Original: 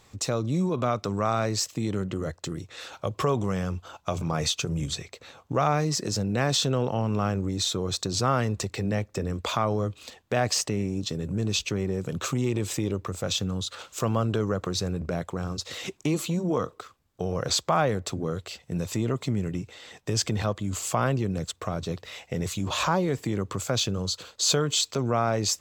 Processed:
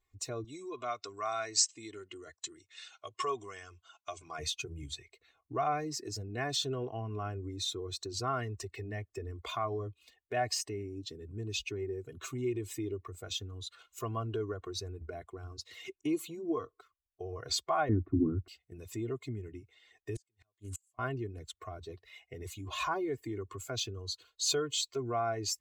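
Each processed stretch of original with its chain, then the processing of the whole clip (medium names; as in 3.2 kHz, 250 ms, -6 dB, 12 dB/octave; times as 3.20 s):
0.44–4.39 s: steep low-pass 8.7 kHz 48 dB/octave + tilt EQ +3 dB/octave
17.89–18.48 s: low-pass 1.6 kHz 24 dB/octave + resonant low shelf 380 Hz +9 dB, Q 3
20.15–20.99 s: peaking EQ 8.6 kHz +11.5 dB 1.8 oct + inverted gate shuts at -17 dBFS, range -32 dB + loudspeaker Doppler distortion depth 0.58 ms
whole clip: expander on every frequency bin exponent 1.5; comb 2.8 ms, depth 92%; trim -7.5 dB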